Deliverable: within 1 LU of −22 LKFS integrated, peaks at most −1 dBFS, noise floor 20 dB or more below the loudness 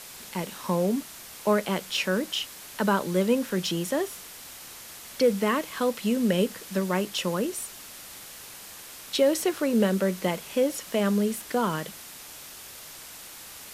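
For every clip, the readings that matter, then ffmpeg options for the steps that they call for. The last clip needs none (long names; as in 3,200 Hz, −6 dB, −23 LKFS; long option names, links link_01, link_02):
background noise floor −44 dBFS; target noise floor −47 dBFS; integrated loudness −27.0 LKFS; sample peak −10.5 dBFS; target loudness −22.0 LKFS
→ -af "afftdn=noise_reduction=6:noise_floor=-44"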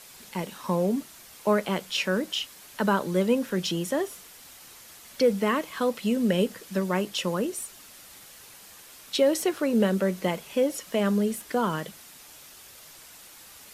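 background noise floor −49 dBFS; integrated loudness −27.0 LKFS; sample peak −10.0 dBFS; target loudness −22.0 LKFS
→ -af "volume=5dB"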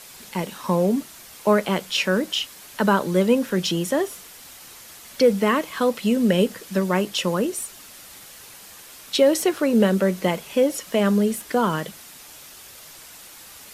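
integrated loudness −22.0 LKFS; sample peak −5.0 dBFS; background noise floor −44 dBFS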